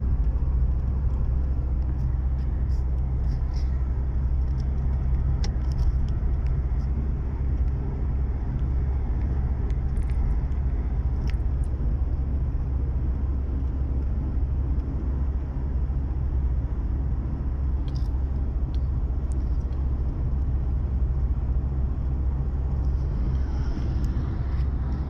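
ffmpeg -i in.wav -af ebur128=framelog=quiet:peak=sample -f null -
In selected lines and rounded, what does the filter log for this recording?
Integrated loudness:
  I:         -27.6 LUFS
  Threshold: -37.6 LUFS
Loudness range:
  LRA:         1.4 LU
  Threshold: -47.7 LUFS
  LRA low:   -28.3 LUFS
  LRA high:  -27.0 LUFS
Sample peak:
  Peak:      -12.7 dBFS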